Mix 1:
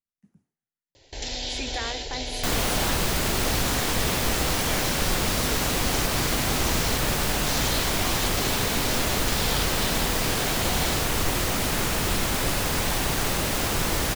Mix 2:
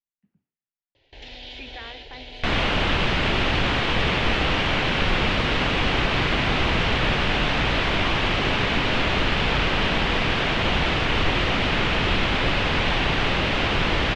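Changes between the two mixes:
second sound +11.5 dB; master: add four-pole ladder low-pass 3.6 kHz, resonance 40%

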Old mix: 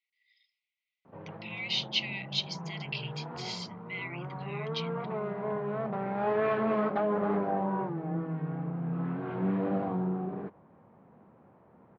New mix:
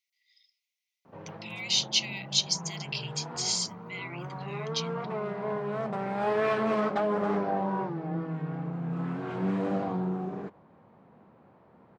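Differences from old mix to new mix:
speech -5.5 dB; master: remove distance through air 370 m

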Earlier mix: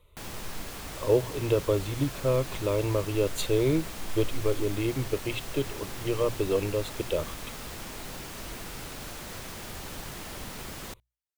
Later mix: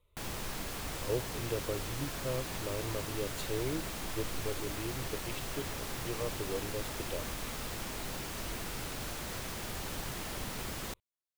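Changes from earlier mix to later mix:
speech -11.5 dB; master: remove hum notches 60/120 Hz

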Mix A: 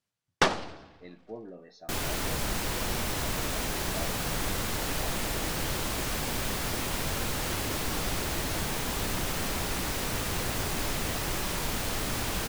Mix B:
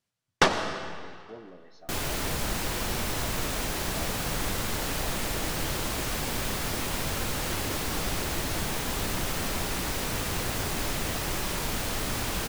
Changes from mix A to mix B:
speech -4.0 dB; reverb: on, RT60 2.1 s

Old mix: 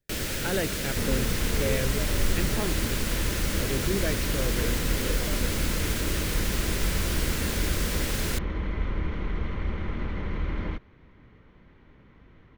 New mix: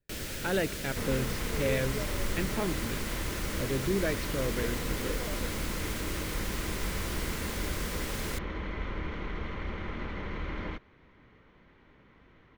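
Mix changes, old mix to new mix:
first sound -7.0 dB; second sound: add bass shelf 260 Hz -8.5 dB

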